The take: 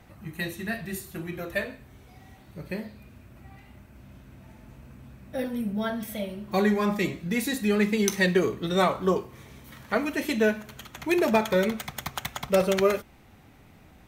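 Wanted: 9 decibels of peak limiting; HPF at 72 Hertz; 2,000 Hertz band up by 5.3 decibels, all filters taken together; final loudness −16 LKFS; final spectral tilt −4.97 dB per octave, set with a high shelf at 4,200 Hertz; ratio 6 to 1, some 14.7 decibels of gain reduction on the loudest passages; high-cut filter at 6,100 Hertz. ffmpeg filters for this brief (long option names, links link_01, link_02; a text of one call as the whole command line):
ffmpeg -i in.wav -af "highpass=72,lowpass=6100,equalizer=frequency=2000:width_type=o:gain=5,highshelf=frequency=4200:gain=6.5,acompressor=threshold=-32dB:ratio=6,volume=22dB,alimiter=limit=-4.5dB:level=0:latency=1" out.wav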